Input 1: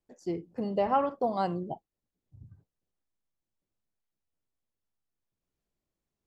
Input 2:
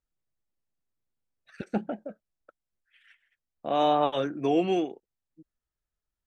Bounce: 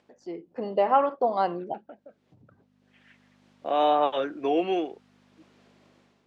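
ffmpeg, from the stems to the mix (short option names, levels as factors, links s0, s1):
-filter_complex "[0:a]acompressor=mode=upward:threshold=0.0126:ratio=2.5,volume=0.562,asplit=2[s0][s1];[1:a]aeval=exprs='val(0)+0.00562*(sin(2*PI*50*n/s)+sin(2*PI*2*50*n/s)/2+sin(2*PI*3*50*n/s)/3+sin(2*PI*4*50*n/s)/4+sin(2*PI*5*50*n/s)/5)':c=same,volume=0.376[s2];[s1]apad=whole_len=276253[s3];[s2][s3]sidechaincompress=threshold=0.00562:ratio=5:attack=5.5:release=1340[s4];[s0][s4]amix=inputs=2:normalize=0,dynaudnorm=f=150:g=5:m=3.35,highpass=350,lowpass=3600"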